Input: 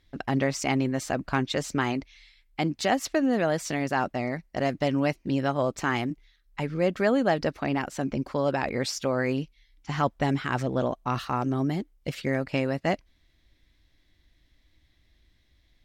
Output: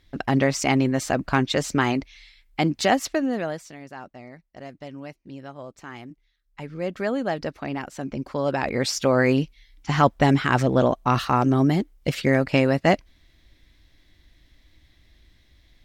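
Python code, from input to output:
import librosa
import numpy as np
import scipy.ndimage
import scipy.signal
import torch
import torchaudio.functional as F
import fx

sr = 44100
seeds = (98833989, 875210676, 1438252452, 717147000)

y = fx.gain(x, sr, db=fx.line((2.89, 5.0), (3.51, -4.0), (3.71, -13.0), (5.88, -13.0), (7.0, -2.5), (8.02, -2.5), (9.16, 7.5)))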